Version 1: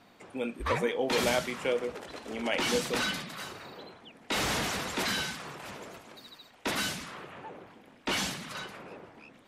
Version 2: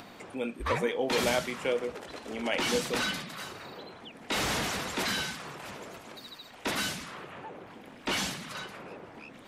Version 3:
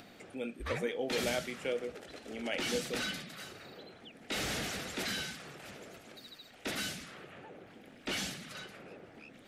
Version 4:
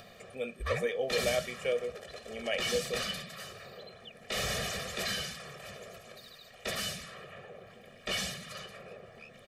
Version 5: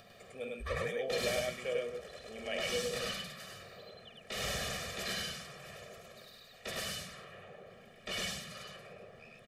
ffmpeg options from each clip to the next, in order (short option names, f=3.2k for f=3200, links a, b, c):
-af "acompressor=mode=upward:threshold=-39dB:ratio=2.5"
-af "equalizer=f=1k:w=3.4:g=-11.5,volume=-5dB"
-af "aecho=1:1:1.7:0.94"
-af "aecho=1:1:49.56|102:0.316|0.891,volume=-6dB"